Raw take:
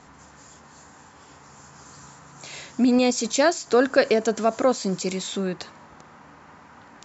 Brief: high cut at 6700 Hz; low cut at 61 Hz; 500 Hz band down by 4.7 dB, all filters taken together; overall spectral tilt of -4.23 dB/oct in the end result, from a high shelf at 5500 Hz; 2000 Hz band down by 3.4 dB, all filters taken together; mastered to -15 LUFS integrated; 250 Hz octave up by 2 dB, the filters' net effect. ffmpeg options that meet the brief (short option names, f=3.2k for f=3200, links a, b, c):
-af "highpass=61,lowpass=6.7k,equalizer=f=250:t=o:g=3.5,equalizer=f=500:t=o:g=-6,equalizer=f=2k:t=o:g=-4.5,highshelf=f=5.5k:g=4,volume=8.5dB"